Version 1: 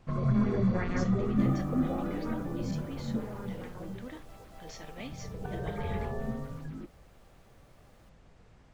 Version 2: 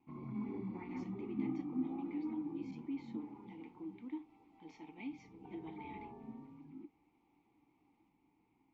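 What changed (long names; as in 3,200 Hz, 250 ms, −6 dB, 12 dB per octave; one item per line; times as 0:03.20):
speech +6.5 dB
master: add formant filter u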